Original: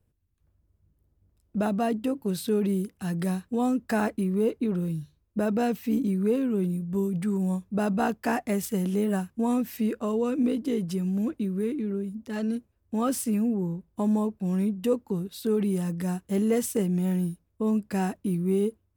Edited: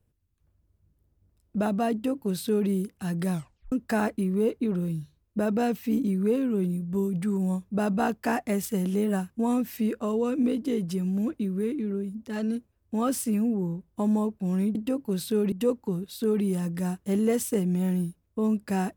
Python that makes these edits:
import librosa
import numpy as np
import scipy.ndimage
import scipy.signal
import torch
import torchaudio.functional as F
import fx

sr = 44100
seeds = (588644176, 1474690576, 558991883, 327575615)

y = fx.edit(x, sr, fx.duplicate(start_s=1.92, length_s=0.77, to_s=14.75),
    fx.tape_stop(start_s=3.32, length_s=0.4), tone=tone)